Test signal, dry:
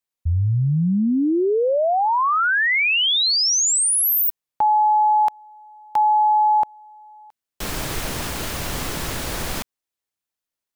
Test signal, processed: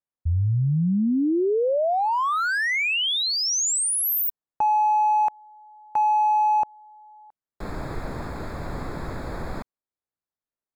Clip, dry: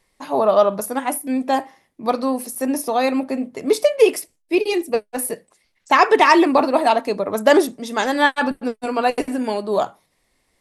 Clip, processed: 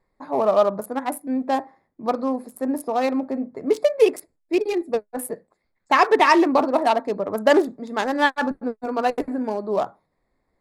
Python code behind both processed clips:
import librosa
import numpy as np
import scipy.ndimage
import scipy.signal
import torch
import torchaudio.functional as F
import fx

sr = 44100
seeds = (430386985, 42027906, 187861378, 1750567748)

y = fx.wiener(x, sr, points=15)
y = F.gain(torch.from_numpy(y), -2.5).numpy()